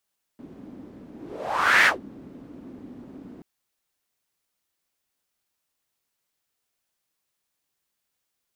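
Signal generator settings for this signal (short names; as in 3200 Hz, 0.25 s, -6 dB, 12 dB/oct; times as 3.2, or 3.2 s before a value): whoosh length 3.03 s, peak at 1.47, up 0.77 s, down 0.14 s, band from 260 Hz, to 1900 Hz, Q 4, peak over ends 26 dB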